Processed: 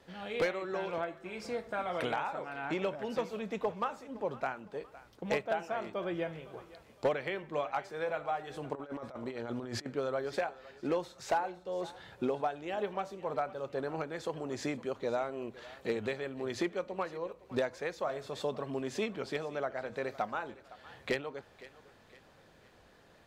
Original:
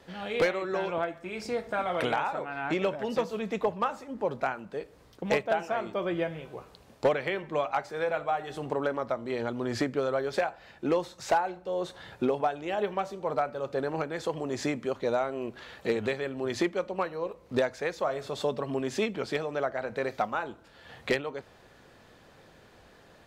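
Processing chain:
on a send: feedback echo with a high-pass in the loop 511 ms, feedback 43%, level −17.5 dB
0:08.75–0:09.86: on the sum: compressor whose output falls as the input rises −34 dBFS, ratio −0.5
level −5.5 dB

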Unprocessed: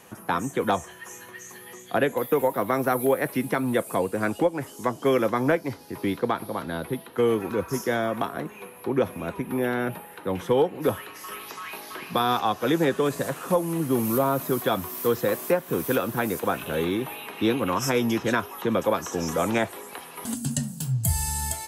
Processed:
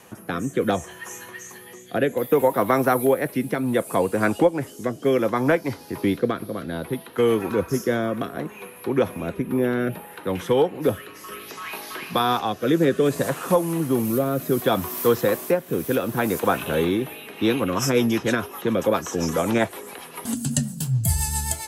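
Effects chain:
rotating-speaker cabinet horn 0.65 Hz, later 7.5 Hz, at 0:17.24
level +5 dB

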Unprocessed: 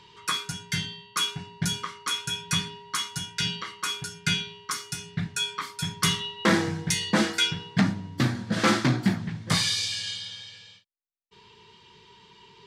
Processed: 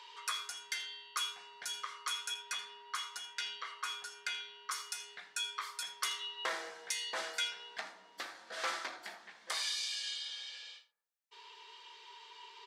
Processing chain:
0:02.34–0:04.72: high-shelf EQ 3,900 Hz −7.5 dB
convolution reverb RT60 0.85 s, pre-delay 4 ms, DRR 11.5 dB
downward compressor 2 to 1, threshold −42 dBFS, peak gain reduction 14 dB
high-pass filter 550 Hz 24 dB per octave
single-tap delay 80 ms −16.5 dB

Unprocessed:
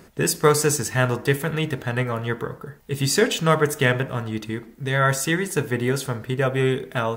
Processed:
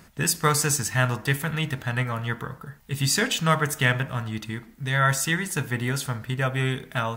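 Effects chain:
parametric band 410 Hz −11.5 dB 1.1 octaves

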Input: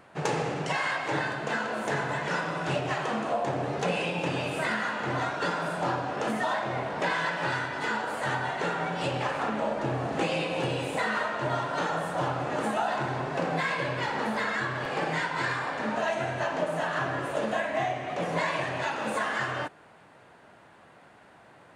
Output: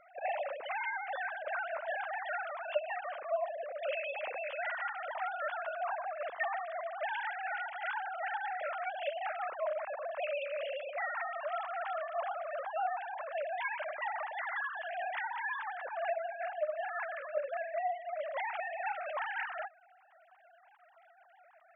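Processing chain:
three sine waves on the formant tracks
speech leveller 0.5 s
level −7.5 dB

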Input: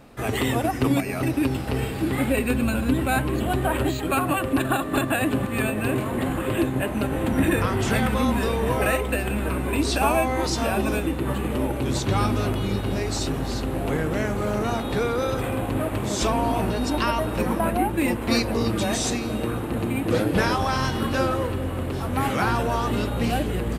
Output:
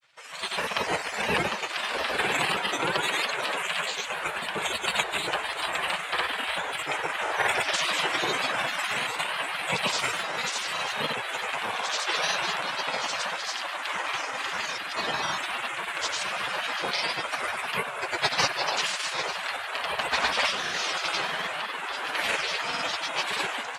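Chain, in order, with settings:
notch comb filter 650 Hz
gate on every frequency bin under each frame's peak −20 dB weak
automatic gain control gain up to 12 dB
granular cloud, pitch spread up and down by 3 semitones
band-pass filter 120–5,800 Hz

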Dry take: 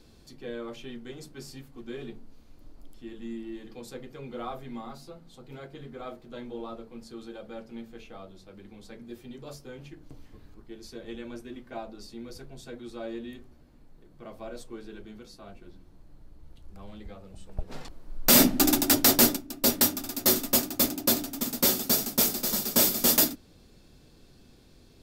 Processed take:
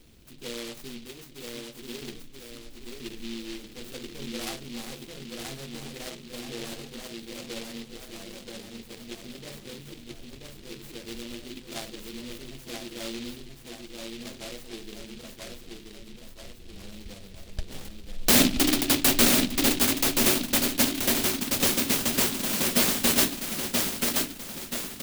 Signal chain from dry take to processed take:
0:01.05–0:02.02: low-shelf EQ 160 Hz −11 dB
repeating echo 980 ms, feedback 48%, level −3.5 dB
short delay modulated by noise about 3,200 Hz, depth 0.25 ms

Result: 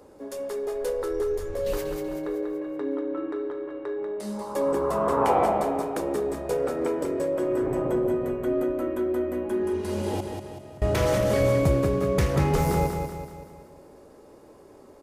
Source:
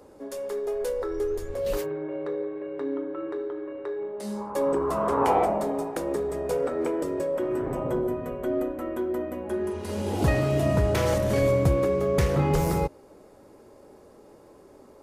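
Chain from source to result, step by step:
0:10.19–0:10.82: gate with flip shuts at −19 dBFS, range −25 dB
repeating echo 190 ms, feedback 48%, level −6 dB

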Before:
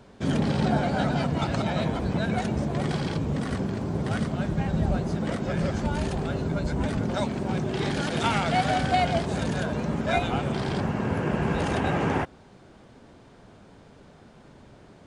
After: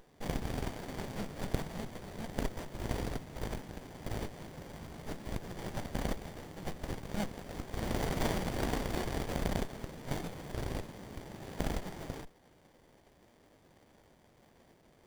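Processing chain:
inverse Chebyshev high-pass filter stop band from 2,500 Hz, stop band 40 dB
windowed peak hold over 33 samples
level +15.5 dB

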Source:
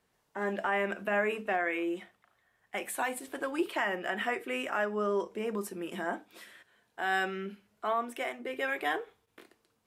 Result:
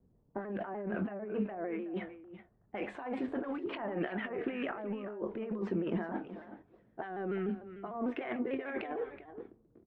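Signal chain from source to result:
low-pass that shuts in the quiet parts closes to 330 Hz, open at −26 dBFS
low-pass filter 6,900 Hz
treble cut that deepens with the level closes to 630 Hz, closed at −26 dBFS
high-shelf EQ 5,100 Hz +6.5 dB
compressor whose output falls as the input rises −41 dBFS, ratio −1
low-shelf EQ 340 Hz +8 dB
double-tracking delay 23 ms −13.5 dB
single-tap delay 375 ms −13 dB
pitch modulation by a square or saw wave saw down 6.7 Hz, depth 100 cents

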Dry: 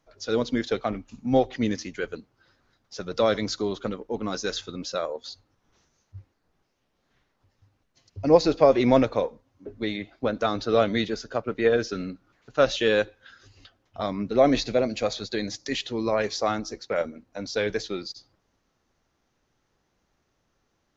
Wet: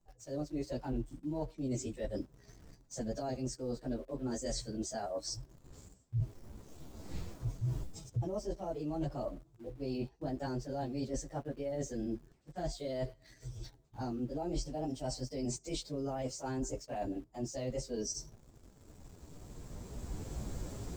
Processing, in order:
phase-vocoder pitch shift without resampling +3.5 semitones
camcorder AGC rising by 9.3 dB per second
parametric band 2,000 Hz −15 dB 2.6 octaves
reversed playback
downward compressor 12 to 1, threshold −40 dBFS, peak gain reduction 23.5 dB
reversed playback
low-shelf EQ 130 Hz +9 dB
in parallel at −5 dB: centre clipping without the shift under −55.5 dBFS

